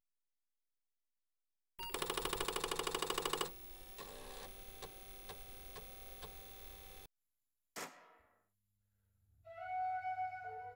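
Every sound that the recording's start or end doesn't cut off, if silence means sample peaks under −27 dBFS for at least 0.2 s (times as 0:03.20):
0:01.95–0:03.42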